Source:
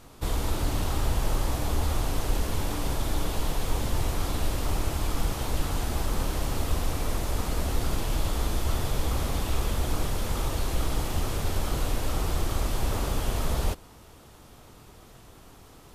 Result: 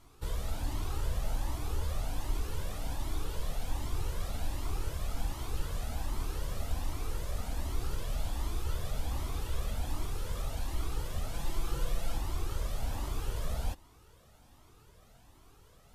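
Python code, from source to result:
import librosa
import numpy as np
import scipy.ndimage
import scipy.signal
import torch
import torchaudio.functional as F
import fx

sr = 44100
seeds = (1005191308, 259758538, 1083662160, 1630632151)

y = fx.comb(x, sr, ms=5.9, depth=0.67, at=(11.33, 12.18))
y = fx.comb_cascade(y, sr, direction='rising', hz=1.3)
y = F.gain(torch.from_numpy(y), -5.5).numpy()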